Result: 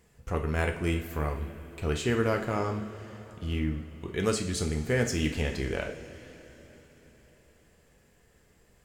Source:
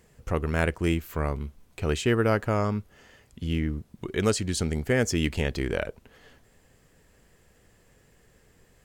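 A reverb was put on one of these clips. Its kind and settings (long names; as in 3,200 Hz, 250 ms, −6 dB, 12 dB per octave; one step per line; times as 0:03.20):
coupled-rooms reverb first 0.47 s, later 4.5 s, from −17 dB, DRR 2.5 dB
level −4.5 dB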